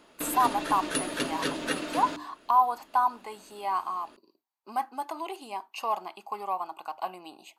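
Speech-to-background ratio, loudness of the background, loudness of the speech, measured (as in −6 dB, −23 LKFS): 2.5 dB, −32.5 LKFS, −30.0 LKFS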